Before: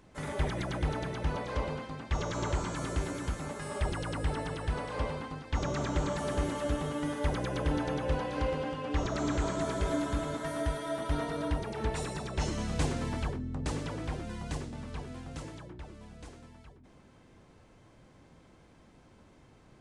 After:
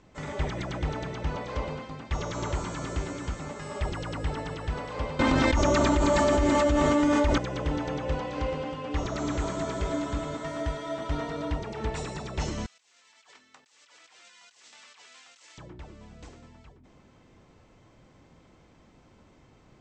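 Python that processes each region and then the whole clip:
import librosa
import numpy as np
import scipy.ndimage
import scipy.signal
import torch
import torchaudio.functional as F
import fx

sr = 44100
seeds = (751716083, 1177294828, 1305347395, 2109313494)

y = fx.chain(x, sr, fx.comb(ms=3.3, depth=0.58),
    fx.env_flatten(amount_pct=100), at=(5.19, 7.38))
y = fx.chain(y, sr, fx.bessel_highpass(hz=2500.0, order=2),
    fx.over_compress(threshold_db=-59.0, ratio=-1.0), at=(12.66, 15.58))
y = scipy.signal.sosfilt(scipy.signal.cheby1(6, 1.0, 8000.0, 'lowpass', fs=sr, output='sos'), y)
y = fx.notch(y, sr, hz=1600.0, q=17.0)
y = F.gain(torch.from_numpy(y), 2.0).numpy()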